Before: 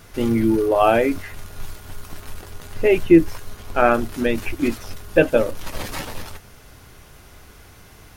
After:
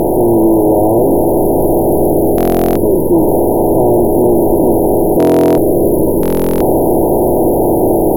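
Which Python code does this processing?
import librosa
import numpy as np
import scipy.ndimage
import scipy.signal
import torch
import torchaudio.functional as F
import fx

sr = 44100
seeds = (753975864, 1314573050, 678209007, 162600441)

p1 = fx.bin_compress(x, sr, power=0.2)
p2 = fx.high_shelf(p1, sr, hz=10000.0, db=11.5)
p3 = fx.rider(p2, sr, range_db=10, speed_s=0.5)
p4 = p2 + F.gain(torch.from_numpy(p3), 0.0).numpy()
p5 = 10.0 ** (-4.5 / 20.0) * np.tanh(p4 / 10.0 ** (-4.5 / 20.0))
p6 = fx.filter_lfo_notch(p5, sr, shape='saw_down', hz=0.32, low_hz=690.0, high_hz=2900.0, q=1.8)
p7 = fx.brickwall_bandstop(p6, sr, low_hz=1000.0, high_hz=10000.0)
p8 = fx.echo_feedback(p7, sr, ms=432, feedback_pct=52, wet_db=-12)
p9 = fx.buffer_glitch(p8, sr, at_s=(2.36, 5.18, 6.21), block=1024, repeats=16)
y = F.gain(torch.from_numpy(p9), -1.0).numpy()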